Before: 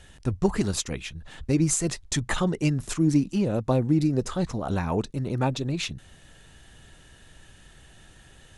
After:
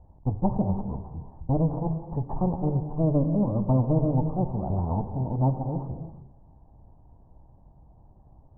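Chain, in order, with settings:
lower of the sound and its delayed copy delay 1.1 ms
Butterworth low-pass 960 Hz 48 dB per octave
reverb whose tail is shaped and stops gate 370 ms flat, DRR 6.5 dB

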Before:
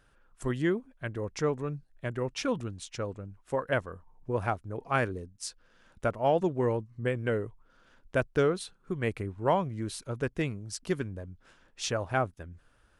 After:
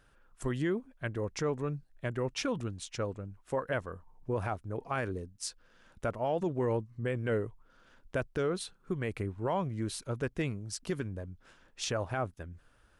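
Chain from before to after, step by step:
brickwall limiter −22.5 dBFS, peak gain reduction 9 dB

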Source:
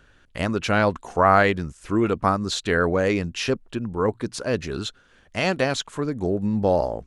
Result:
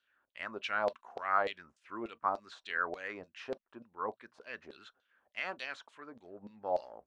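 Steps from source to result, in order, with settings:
auto-filter band-pass saw down 3.4 Hz 610–4,300 Hz
on a send at −18 dB: convolution reverb, pre-delay 3 ms
on the sum: one half of a high-frequency compander decoder only
level −7 dB

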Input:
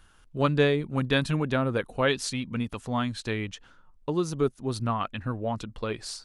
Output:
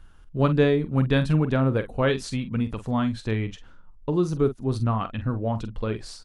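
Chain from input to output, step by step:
spectral tilt −2 dB per octave
double-tracking delay 45 ms −11 dB

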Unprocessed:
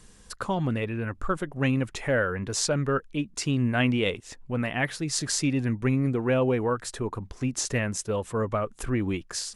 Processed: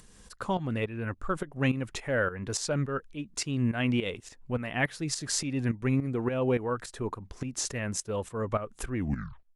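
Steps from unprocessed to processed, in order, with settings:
turntable brake at the end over 0.60 s
shaped tremolo saw up 3.5 Hz, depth 75%
upward compression, threshold −49 dBFS

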